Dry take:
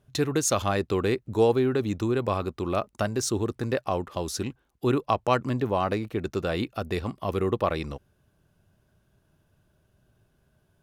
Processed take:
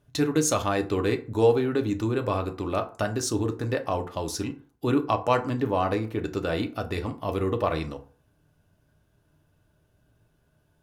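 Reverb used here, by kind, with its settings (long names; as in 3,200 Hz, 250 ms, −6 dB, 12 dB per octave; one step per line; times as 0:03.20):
feedback delay network reverb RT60 0.42 s, low-frequency decay 0.9×, high-frequency decay 0.55×, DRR 5 dB
level −1 dB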